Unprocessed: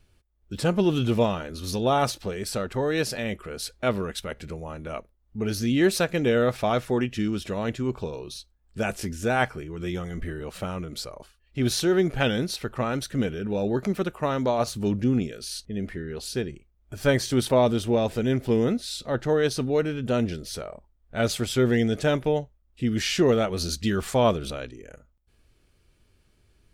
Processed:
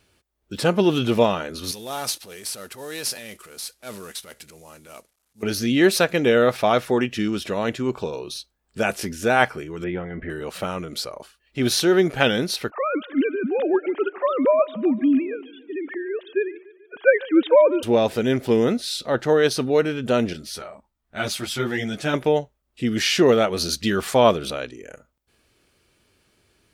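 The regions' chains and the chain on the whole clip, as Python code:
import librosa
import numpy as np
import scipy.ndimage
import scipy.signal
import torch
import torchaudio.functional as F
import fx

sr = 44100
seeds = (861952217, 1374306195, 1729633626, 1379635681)

y = fx.chain(x, sr, fx.cvsd(bps=64000),
    fx.transient(attack_db=-8, sustain_db=5),
    fx.pre_emphasis(coefficient=0.8), at=(1.71, 5.43))
y = fx.chain(y, sr, fx.lowpass(hz=2300.0, slope=24),
    fx.notch(hz=1200.0, q=6.1), at=(9.84, 10.3))
y = fx.chain(y, sr, fx.sine_speech(),
    fx.echo_feedback(ms=145, feedback_pct=58, wet_db=-20.5), at=(12.7, 17.83))
y = fx.chain(y, sr, fx.peak_eq(hz=470.0, db=-9.0, octaves=0.55),
    fx.ensemble(), at=(20.33, 22.14))
y = fx.highpass(y, sr, hz=290.0, slope=6)
y = fx.dynamic_eq(y, sr, hz=7500.0, q=2.6, threshold_db=-53.0, ratio=4.0, max_db=-4)
y = y * 10.0 ** (6.5 / 20.0)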